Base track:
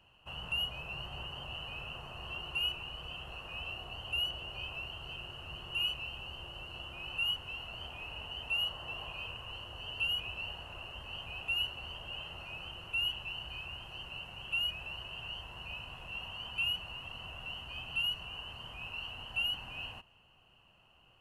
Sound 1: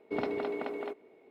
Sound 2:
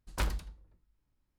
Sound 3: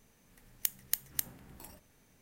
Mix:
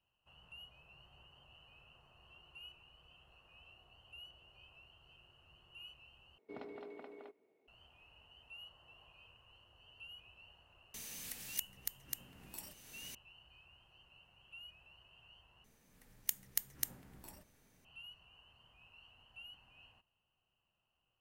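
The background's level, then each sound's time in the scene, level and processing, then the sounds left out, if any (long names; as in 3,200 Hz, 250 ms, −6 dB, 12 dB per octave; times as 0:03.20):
base track −20 dB
0:06.38: overwrite with 1 −16 dB
0:10.94: mix in 3 −7 dB + multiband upward and downward compressor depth 100%
0:15.64: overwrite with 3 −4 dB
not used: 2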